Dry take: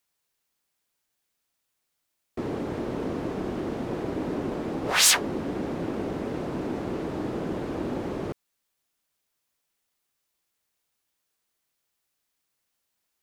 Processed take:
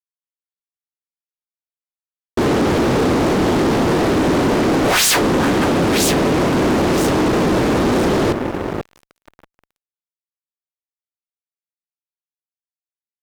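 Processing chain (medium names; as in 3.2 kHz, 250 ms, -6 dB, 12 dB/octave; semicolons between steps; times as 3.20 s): echo whose repeats swap between lows and highs 489 ms, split 1.5 kHz, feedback 51%, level -10 dB; fuzz box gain 37 dB, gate -44 dBFS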